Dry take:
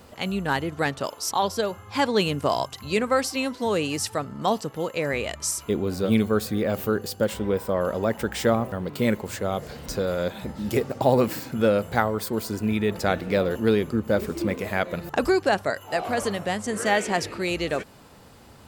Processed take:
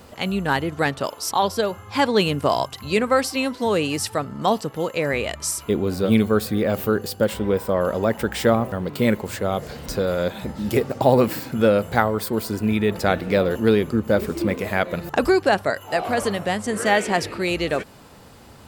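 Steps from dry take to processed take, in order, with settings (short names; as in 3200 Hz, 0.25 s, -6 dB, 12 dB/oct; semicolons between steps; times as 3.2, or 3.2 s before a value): dynamic EQ 6500 Hz, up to -4 dB, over -49 dBFS, Q 2.3; gain +3.5 dB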